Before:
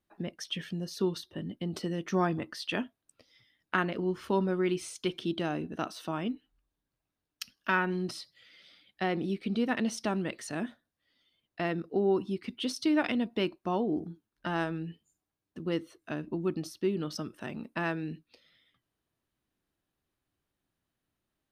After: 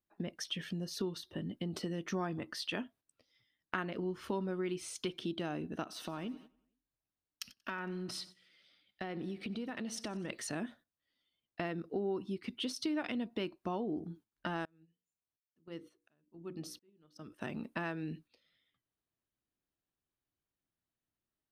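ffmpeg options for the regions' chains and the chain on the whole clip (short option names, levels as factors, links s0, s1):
-filter_complex "[0:a]asettb=1/sr,asplit=3[s0][s1][s2];[s0]atrim=end=5.834[s3];[s1]atrim=start=5.83:end=10.3,asetpts=PTS-STARTPTS,afade=t=in:d=0.004:c=qsin,afade=t=out:st=4.466:d=0.004:c=qsin,acompressor=threshold=0.0126:ratio=3:attack=3.2:release=140:knee=1:detection=peak,aecho=1:1:92|184|276|368|460:0.112|0.0662|0.0391|0.023|0.0136,atrim=end_sample=197127[s4];[s2]atrim=start=10.296[s5];[s3][s4]acrossfade=d=0.004:c1=hsin:c2=qsin[s6];[s6][s5]acrossfade=d=0.004:c1=qsin:c2=hsin,asettb=1/sr,asplit=3[s7][s8][s9];[s7]atrim=end=14.654[s10];[s8]atrim=start=14.65:end=17.32,asetpts=PTS-STARTPTS,afade=t=in:d=0.004:c=qsin,afade=t=out:st=2.666:d=0.004:c=qsin,bandreject=f=60:t=h:w=6,bandreject=f=120:t=h:w=6,bandreject=f=180:t=h:w=6,bandreject=f=240:t=h:w=6,bandreject=f=300:t=h:w=6,bandreject=f=360:t=h:w=6,bandreject=f=420:t=h:w=6,bandreject=f=480:t=h:w=6,bandreject=f=540:t=h:w=6,aeval=exprs='val(0)*pow(10,-34*if(lt(mod(-1.4*n/s,1),2*abs(-1.4)/1000),1-mod(-1.4*n/s,1)/(2*abs(-1.4)/1000),(mod(-1.4*n/s,1)-2*abs(-1.4)/1000)/(1-2*abs(-1.4)/1000))/20)':c=same[s11];[s9]atrim=start=17.316[s12];[s10][s11]acrossfade=d=0.004:c1=hsin:c2=qsin[s13];[s13][s12]acrossfade=d=0.004:c1=qsin:c2=hsin,agate=range=0.251:threshold=0.002:ratio=16:detection=peak,acompressor=threshold=0.01:ratio=2.5,volume=1.26"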